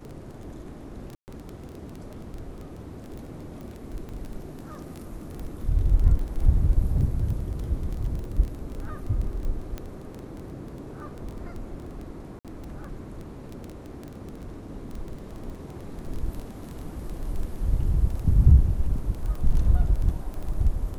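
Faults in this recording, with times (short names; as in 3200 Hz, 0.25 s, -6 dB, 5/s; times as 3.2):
crackle 11/s -30 dBFS
1.15–1.28 gap 0.129 s
4.09 pop -28 dBFS
9.78 pop -20 dBFS
12.39–12.45 gap 57 ms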